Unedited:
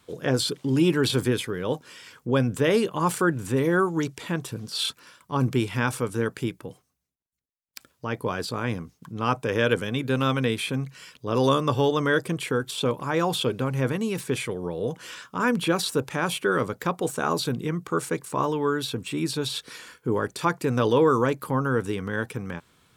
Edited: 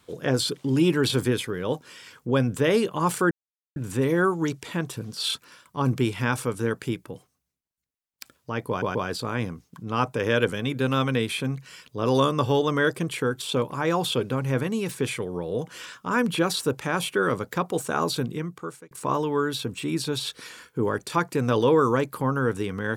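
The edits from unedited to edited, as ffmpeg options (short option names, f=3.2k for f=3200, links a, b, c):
-filter_complex "[0:a]asplit=5[a][b][c][d][e];[a]atrim=end=3.31,asetpts=PTS-STARTPTS,afade=t=out:st=3.306:d=0.004:c=hsin,apad=pad_dur=0.45[f];[b]atrim=start=3.31:end=8.372,asetpts=PTS-STARTPTS,afade=t=in:d=0.004:c=hsin[g];[c]atrim=start=8.238:end=8.372[h];[d]atrim=start=8.238:end=18.2,asetpts=PTS-STARTPTS,afade=t=out:st=9.272:d=0.69[i];[e]atrim=start=18.2,asetpts=PTS-STARTPTS,afade=t=in:d=0.004:c=hsin[j];[f][g]concat=n=2:v=0:a=1[k];[k][h]acrossfade=d=0.004:c1=hsin:c2=hsin[l];[i][j]concat=n=2:v=0:a=1[m];[l][m]acrossfade=d=0.004:c1=hsin:c2=hsin"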